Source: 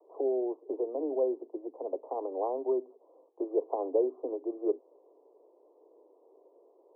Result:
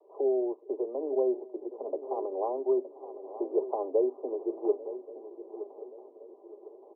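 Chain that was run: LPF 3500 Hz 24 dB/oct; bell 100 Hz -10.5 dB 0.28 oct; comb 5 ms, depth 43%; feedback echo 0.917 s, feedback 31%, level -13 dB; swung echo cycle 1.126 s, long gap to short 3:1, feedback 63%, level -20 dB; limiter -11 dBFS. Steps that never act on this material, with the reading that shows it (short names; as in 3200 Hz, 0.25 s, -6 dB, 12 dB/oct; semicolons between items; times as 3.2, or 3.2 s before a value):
LPF 3500 Hz: input band ends at 1100 Hz; bell 100 Hz: input band starts at 240 Hz; limiter -11 dBFS: input peak -15.0 dBFS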